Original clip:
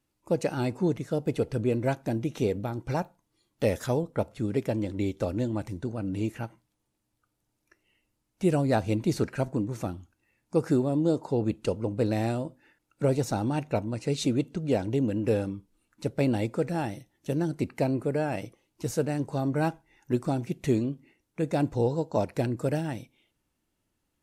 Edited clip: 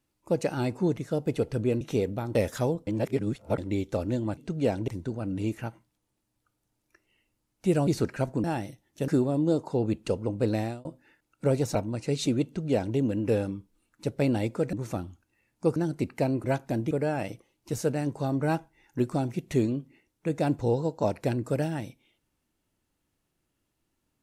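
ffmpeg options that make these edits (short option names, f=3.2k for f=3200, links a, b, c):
-filter_complex "[0:a]asplit=16[a][b][c][d][e][f][g][h][i][j][k][l][m][n][o][p];[a]atrim=end=1.812[q];[b]atrim=start=2.278:end=2.822[r];[c]atrim=start=3.628:end=4.152[s];[d]atrim=start=4.148:end=4.862,asetpts=PTS-STARTPTS,areverse[t];[e]atrim=start=4.858:end=5.652[u];[f]atrim=start=14.438:end=14.952[v];[g]atrim=start=5.648:end=8.642[w];[h]atrim=start=9.058:end=9.632[x];[i]atrim=start=16.718:end=17.362[y];[j]atrim=start=10.658:end=12.43,asetpts=PTS-STARTPTS,afade=t=out:st=1.482:d=0.29[z];[k]atrim=start=12.43:end=13.332,asetpts=PTS-STARTPTS,afade=t=in:d=0.004:c=hsin[aa];[l]atrim=start=13.738:end=16.722[ab];[m]atrim=start=9.628:end=10.662[ac];[n]atrim=start=17.358:end=18.042[ad];[o]atrim=start=1.808:end=2.282[ae];[p]atrim=start=18.038[af];[q][r]acrossfade=d=0.004:c1=hsin:c2=hsin[ag];[ag][s]acrossfade=d=0.004:c1=hsin:c2=hsin[ah];[ah][t]acrossfade=d=0.004:c1=hsin:c2=hsin[ai];[ai][u]acrossfade=d=0.004:c1=hsin:c2=hsin[aj];[aj][v]acrossfade=d=0.004:c1=hsin:c2=hsin[ak];[ak][w]acrossfade=d=0.004:c1=hsin:c2=hsin[al];[al][x]acrossfade=d=0.004:c1=hsin:c2=hsin[am];[am][y]acrossfade=d=0.004:c1=hsin:c2=hsin[an];[z][aa]concat=n=2:v=0:a=1[ao];[an][ao]acrossfade=d=0.004:c1=hsin:c2=hsin[ap];[ap][ab]acrossfade=d=0.004:c1=hsin:c2=hsin[aq];[aq][ac]acrossfade=d=0.004:c1=hsin:c2=hsin[ar];[ar][ad]acrossfade=d=0.004:c1=hsin:c2=hsin[as];[as][ae]acrossfade=d=0.004:c1=hsin:c2=hsin[at];[at][af]acrossfade=d=0.004:c1=hsin:c2=hsin"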